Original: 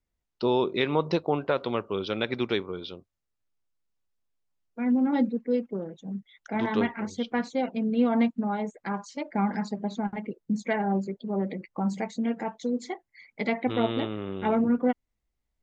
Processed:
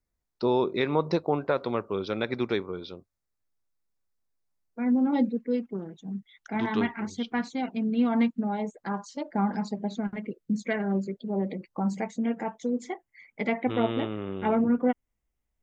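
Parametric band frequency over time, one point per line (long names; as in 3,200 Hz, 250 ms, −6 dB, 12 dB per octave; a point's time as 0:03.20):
parametric band −12 dB 0.35 octaves
0:04.91 3,000 Hz
0:05.59 540 Hz
0:08.16 540 Hz
0:08.82 2,300 Hz
0:09.47 2,300 Hz
0:10.07 840 Hz
0:11.14 840 Hz
0:12.06 4,200 Hz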